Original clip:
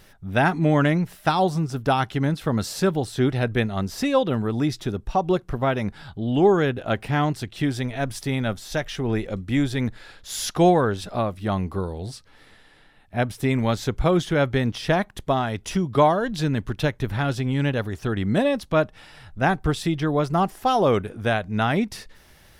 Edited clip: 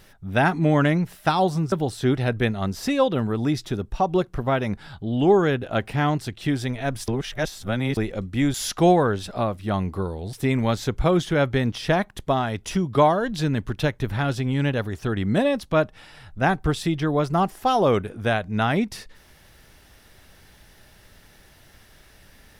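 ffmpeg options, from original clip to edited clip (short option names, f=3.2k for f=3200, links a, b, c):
-filter_complex "[0:a]asplit=6[a][b][c][d][e][f];[a]atrim=end=1.722[g];[b]atrim=start=2.868:end=8.232[h];[c]atrim=start=8.228:end=9.122,asetpts=PTS-STARTPTS,areverse[i];[d]atrim=start=9.118:end=9.692[j];[e]atrim=start=10.318:end=12.112[k];[f]atrim=start=13.328[l];[g][h]acrossfade=d=0.004:c1=hsin:c2=hsin[m];[m][i]acrossfade=d=0.004:c1=hsin:c2=hsin[n];[n][j]acrossfade=d=0.004:c1=hsin:c2=hsin[o];[o][k]acrossfade=d=0.004:c1=hsin:c2=hsin[p];[p][l]acrossfade=d=0.004:c1=hsin:c2=hsin"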